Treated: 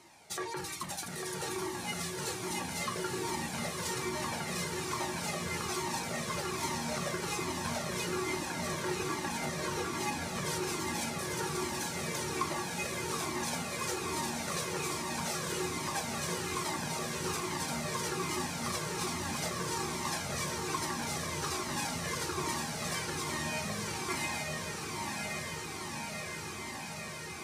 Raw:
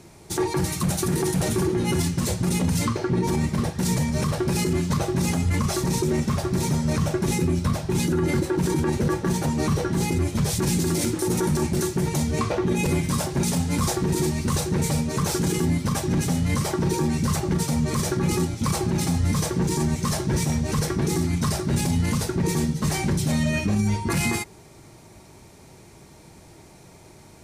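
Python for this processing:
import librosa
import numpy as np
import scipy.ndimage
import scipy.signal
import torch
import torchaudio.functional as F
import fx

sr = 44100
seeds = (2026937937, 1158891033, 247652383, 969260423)

y = fx.highpass(x, sr, hz=1100.0, slope=6)
y = fx.high_shelf(y, sr, hz=5100.0, db=-8.0)
y = fx.rider(y, sr, range_db=10, speed_s=0.5)
y = fx.echo_diffused(y, sr, ms=1019, feedback_pct=80, wet_db=-3)
y = fx.comb_cascade(y, sr, direction='falling', hz=1.2)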